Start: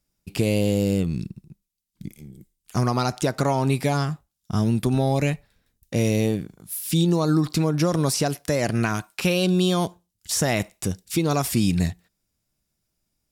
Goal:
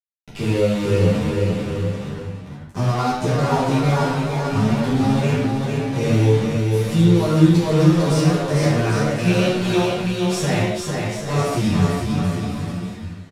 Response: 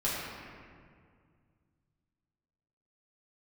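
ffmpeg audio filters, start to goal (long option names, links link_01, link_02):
-filter_complex "[0:a]asettb=1/sr,asplit=3[link_01][link_02][link_03];[link_01]atrim=end=10.704[link_04];[link_02]atrim=start=10.7:end=11.28,asetpts=PTS-STARTPTS,afade=type=in:duration=0.004:curve=qsin,afade=type=out:start_time=0.576:duration=0.004:curve=qsin,acompressor=threshold=-35dB:ratio=10[link_05];[link_03]atrim=start=11.276[link_06];[link_04][link_05]acrossfade=duration=0.004:curve1=hsin:curve2=qsin[link_07];[link_07][link_06]acrossfade=duration=0.004:curve1=qsin:curve2=hsin,acrusher=bits=4:mix=0:aa=0.000001,adynamicsmooth=sensitivity=1.5:basefreq=6000,aecho=1:1:450|787.5|1041|1230|1373:0.631|0.398|0.251|0.158|0.1[link_08];[1:a]atrim=start_sample=2205,atrim=end_sample=6174,asetrate=33075,aresample=44100[link_09];[link_08][link_09]afir=irnorm=-1:irlink=0,asplit=2[link_10][link_11];[link_11]adelay=10.3,afreqshift=2.3[link_12];[link_10][link_12]amix=inputs=2:normalize=1,volume=-4dB"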